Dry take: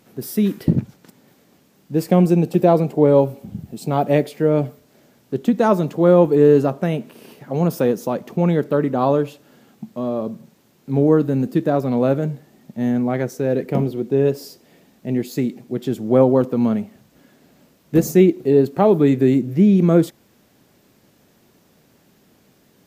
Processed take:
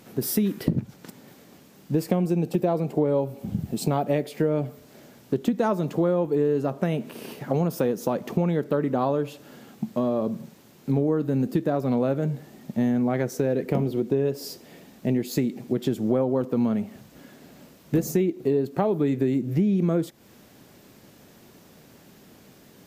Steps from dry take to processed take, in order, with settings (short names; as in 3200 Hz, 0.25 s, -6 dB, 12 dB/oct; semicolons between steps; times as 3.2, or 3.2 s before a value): compressor 6:1, threshold -25 dBFS, peak gain reduction 16.5 dB; gain +4.5 dB